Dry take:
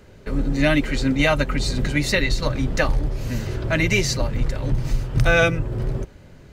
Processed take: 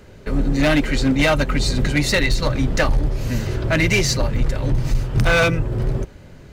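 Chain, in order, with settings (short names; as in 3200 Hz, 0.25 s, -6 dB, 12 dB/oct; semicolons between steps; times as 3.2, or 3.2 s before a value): hard clip -15 dBFS, distortion -13 dB; gain +3.5 dB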